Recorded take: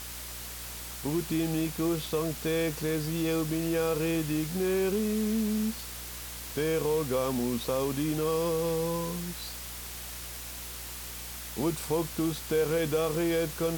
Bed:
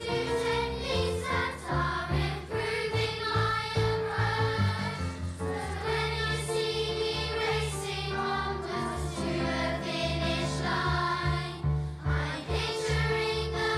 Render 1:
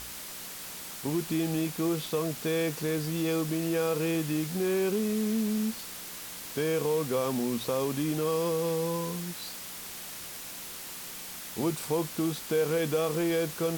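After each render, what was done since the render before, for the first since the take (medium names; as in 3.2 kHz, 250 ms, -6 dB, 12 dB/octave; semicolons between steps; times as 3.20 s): de-hum 60 Hz, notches 2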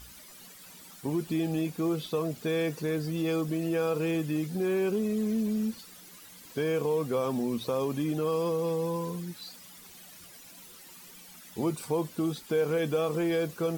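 noise reduction 13 dB, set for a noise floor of -42 dBFS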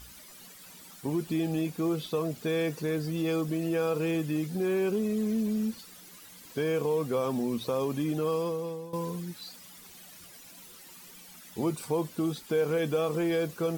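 8.31–8.93 s: fade out linear, to -15 dB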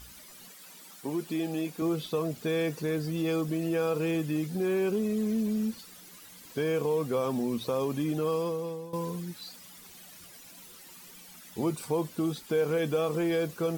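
0.51–1.82 s: Bessel high-pass 240 Hz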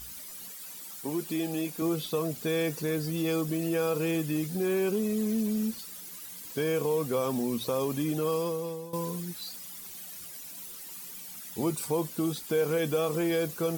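treble shelf 6.3 kHz +10 dB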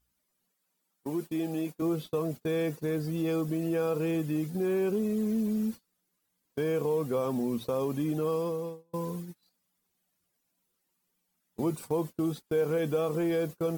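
gate -35 dBFS, range -27 dB; treble shelf 2 kHz -10 dB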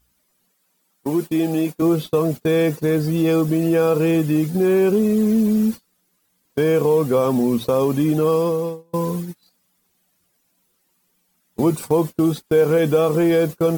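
trim +12 dB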